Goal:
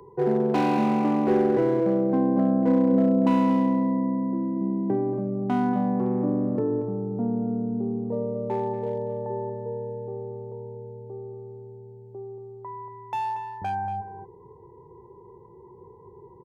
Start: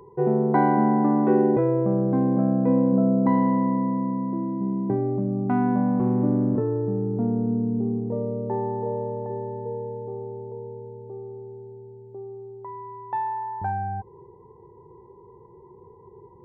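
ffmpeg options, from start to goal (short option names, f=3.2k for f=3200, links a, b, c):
-filter_complex "[0:a]asettb=1/sr,asplit=3[a][b][c];[a]atrim=end=6.244[d];[b]atrim=start=6.24:end=7.47,asetpts=PTS-STARTPTS,afade=t=in:d=0.004:c=qsin,afade=t=out:st=1.226:d=0.004:c=qsin,lowpass=f=1.6k:p=1[e];[c]atrim=start=7.466[f];[d][e]acrossfade=d=0.004:c1=hsin:c2=qsin[g];[g][f]acrossfade=d=0.004:c1=qsin:c2=hsin,acrossover=split=170|450[h][i][j];[h]acompressor=threshold=-42dB:ratio=6[k];[j]volume=26dB,asoftclip=hard,volume=-26dB[l];[k][i][l]amix=inputs=3:normalize=0,asplit=2[m][n];[n]adelay=233.2,volume=-10dB,highshelf=f=4k:g=-5.25[o];[m][o]amix=inputs=2:normalize=0"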